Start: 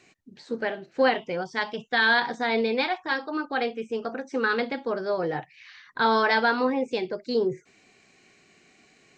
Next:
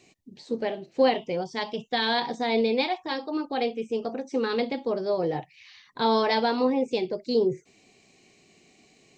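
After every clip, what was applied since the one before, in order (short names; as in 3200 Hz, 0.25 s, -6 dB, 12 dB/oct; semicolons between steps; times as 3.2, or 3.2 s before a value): bell 1500 Hz -15 dB 0.74 oct; gain +2 dB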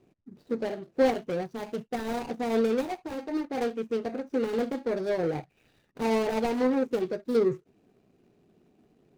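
median filter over 41 samples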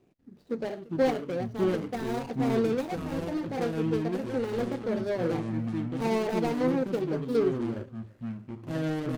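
echoes that change speed 0.193 s, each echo -6 st, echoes 2; echo 0.341 s -22.5 dB; gain -2 dB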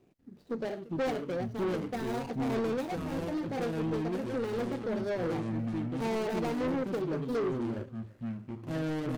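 soft clip -27 dBFS, distortion -11 dB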